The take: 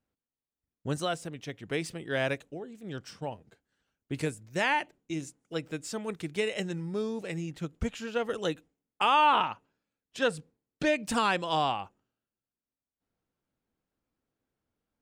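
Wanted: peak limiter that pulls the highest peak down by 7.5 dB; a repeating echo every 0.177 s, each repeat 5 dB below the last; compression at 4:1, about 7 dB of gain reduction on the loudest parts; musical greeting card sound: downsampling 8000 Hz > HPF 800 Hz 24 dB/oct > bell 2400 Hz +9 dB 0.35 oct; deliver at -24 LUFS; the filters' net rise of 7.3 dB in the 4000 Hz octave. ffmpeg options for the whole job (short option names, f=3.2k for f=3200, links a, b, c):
-af "equalizer=f=4k:t=o:g=8,acompressor=threshold=-26dB:ratio=4,alimiter=limit=-21.5dB:level=0:latency=1,aecho=1:1:177|354|531|708|885|1062|1239:0.562|0.315|0.176|0.0988|0.0553|0.031|0.0173,aresample=8000,aresample=44100,highpass=f=800:w=0.5412,highpass=f=800:w=1.3066,equalizer=f=2.4k:t=o:w=0.35:g=9,volume=10.5dB"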